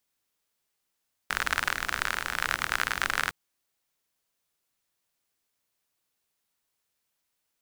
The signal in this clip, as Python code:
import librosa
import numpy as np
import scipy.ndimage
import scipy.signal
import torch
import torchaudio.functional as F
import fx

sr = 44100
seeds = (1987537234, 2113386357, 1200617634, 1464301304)

y = fx.rain(sr, seeds[0], length_s=2.01, drops_per_s=48.0, hz=1500.0, bed_db=-12.0)